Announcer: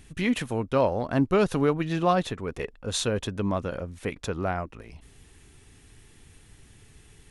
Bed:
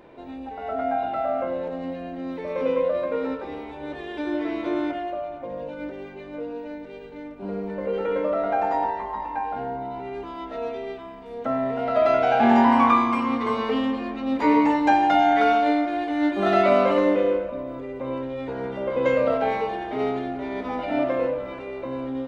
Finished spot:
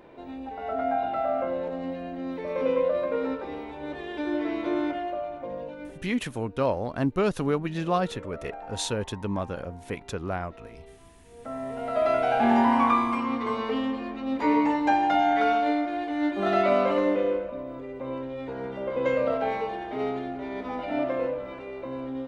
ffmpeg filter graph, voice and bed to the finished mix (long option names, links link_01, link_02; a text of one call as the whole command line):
ffmpeg -i stem1.wav -i stem2.wav -filter_complex "[0:a]adelay=5850,volume=-2.5dB[link_01];[1:a]volume=12dB,afade=type=out:start_time=5.51:duration=0.62:silence=0.158489,afade=type=in:start_time=11.24:duration=0.86:silence=0.211349[link_02];[link_01][link_02]amix=inputs=2:normalize=0" out.wav